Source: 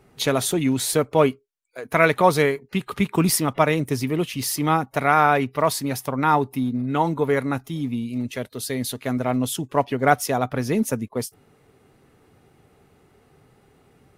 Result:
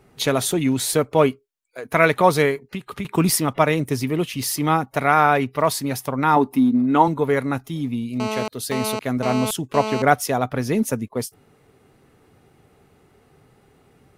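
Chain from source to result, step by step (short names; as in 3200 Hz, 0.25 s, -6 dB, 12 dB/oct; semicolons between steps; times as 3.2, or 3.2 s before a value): 2.61–3.05 compressor 3:1, threshold -30 dBFS, peak gain reduction 11 dB; 6.36–7.08 graphic EQ 125/250/1000 Hz -7/+8/+6 dB; 8.2–10.02 GSM buzz -27 dBFS; gain +1 dB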